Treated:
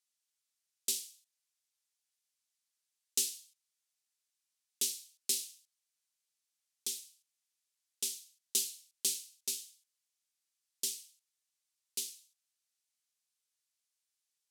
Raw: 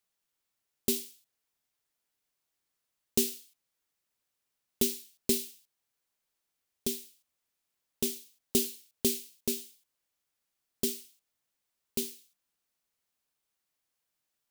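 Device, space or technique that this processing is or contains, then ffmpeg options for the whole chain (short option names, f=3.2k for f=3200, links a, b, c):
piezo pickup straight into a mixer: -af "lowpass=7.8k,aderivative,volume=4dB"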